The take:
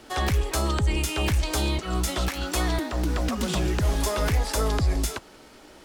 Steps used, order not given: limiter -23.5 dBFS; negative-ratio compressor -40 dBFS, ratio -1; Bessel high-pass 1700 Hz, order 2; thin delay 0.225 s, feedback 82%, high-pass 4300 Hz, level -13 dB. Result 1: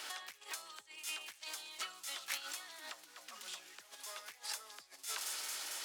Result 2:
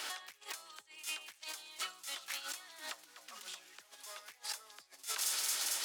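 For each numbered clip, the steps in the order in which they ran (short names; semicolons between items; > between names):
limiter > thin delay > negative-ratio compressor > Bessel high-pass; thin delay > negative-ratio compressor > limiter > Bessel high-pass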